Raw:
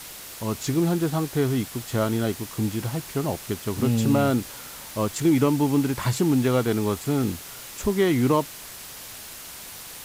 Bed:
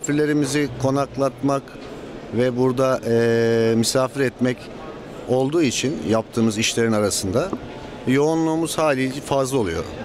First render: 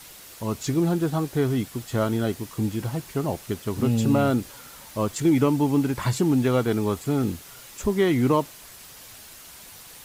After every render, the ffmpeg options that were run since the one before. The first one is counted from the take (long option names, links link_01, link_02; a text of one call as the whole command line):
ffmpeg -i in.wav -af "afftdn=noise_reduction=6:noise_floor=-40" out.wav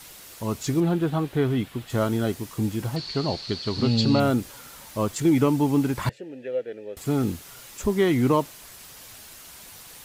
ffmpeg -i in.wav -filter_complex "[0:a]asettb=1/sr,asplit=3[link_01][link_02][link_03];[link_01]atrim=end=0.804[link_04];[link_02]atrim=start=0.8:end=1.9,asetpts=PTS-STARTPTS,afade=type=in:duration=0.004:curve=qsin,afade=type=out:start_time=1.096:duration=0.004:curve=qsin,highshelf=frequency=4300:width_type=q:width=1.5:gain=-7.5[link_05];[link_03]atrim=start=1.896[link_06];[link_04][link_05]acrossfade=duration=0.004:curve1=hsin:curve2=qsin[link_07];[link_07][link_06]acrossfade=duration=0.004:curve1=qsin:curve2=hsin,asettb=1/sr,asplit=3[link_08][link_09][link_10];[link_08]atrim=end=2.964[link_11];[link_09]atrim=start=2.96:end=4.2,asetpts=PTS-STARTPTS,afade=type=in:duration=0.004:curve=qsin,afade=type=out:start_time=1.236:duration=0.004:curve=qsin,lowpass=frequency=4400:width_type=q:width=16[link_12];[link_10]atrim=start=4.196[link_13];[link_11][link_12]acrossfade=duration=0.004:curve1=hsin:curve2=qsin[link_14];[link_14][link_13]acrossfade=duration=0.004:curve1=qsin:curve2=hsin,asettb=1/sr,asplit=3[link_15][link_16][link_17];[link_15]atrim=end=6.094[link_18];[link_16]atrim=start=6.09:end=6.97,asetpts=PTS-STARTPTS,afade=type=in:duration=0.004:curve=qsin,afade=type=out:start_time=0.876:duration=0.004:curve=qsin,asplit=3[link_19][link_20][link_21];[link_19]bandpass=frequency=530:width_type=q:width=8,volume=0dB[link_22];[link_20]bandpass=frequency=1840:width_type=q:width=8,volume=-6dB[link_23];[link_21]bandpass=frequency=2480:width_type=q:width=8,volume=-9dB[link_24];[link_22][link_23][link_24]amix=inputs=3:normalize=0[link_25];[link_17]atrim=start=6.966[link_26];[link_18][link_25]acrossfade=duration=0.004:curve1=hsin:curve2=qsin[link_27];[link_27][link_26]acrossfade=duration=0.004:curve1=qsin:curve2=hsin" out.wav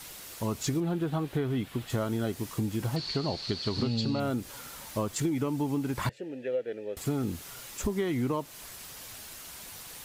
ffmpeg -i in.wav -af "acompressor=threshold=-26dB:ratio=10" out.wav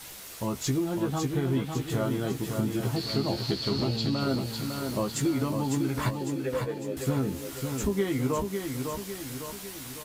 ffmpeg -i in.wav -filter_complex "[0:a]asplit=2[link_01][link_02];[link_02]adelay=15,volume=-5dB[link_03];[link_01][link_03]amix=inputs=2:normalize=0,aecho=1:1:553|1106|1659|2212|2765|3318|3871:0.531|0.276|0.144|0.0746|0.0388|0.0202|0.0105" out.wav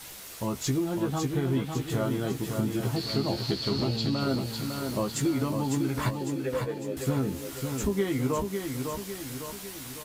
ffmpeg -i in.wav -af anull out.wav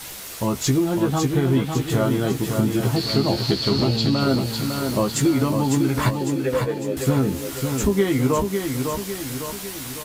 ffmpeg -i in.wav -af "volume=8dB" out.wav